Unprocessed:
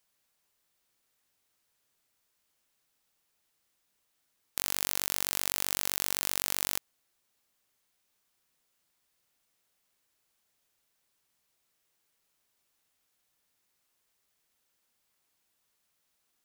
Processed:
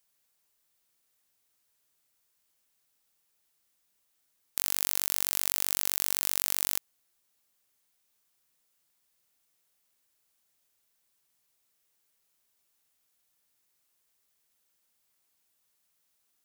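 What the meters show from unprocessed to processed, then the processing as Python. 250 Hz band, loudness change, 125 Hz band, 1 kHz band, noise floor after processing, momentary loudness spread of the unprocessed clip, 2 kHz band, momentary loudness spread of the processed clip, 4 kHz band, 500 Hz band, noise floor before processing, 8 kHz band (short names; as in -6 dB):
-2.5 dB, +2.5 dB, -2.5 dB, -2.5 dB, -75 dBFS, 4 LU, -2.0 dB, 4 LU, -0.5 dB, -2.5 dB, -77 dBFS, +2.0 dB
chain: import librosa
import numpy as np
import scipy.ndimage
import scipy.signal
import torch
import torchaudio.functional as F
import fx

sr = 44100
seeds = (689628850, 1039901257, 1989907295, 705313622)

y = fx.high_shelf(x, sr, hz=6200.0, db=6.5)
y = y * 10.0 ** (-2.5 / 20.0)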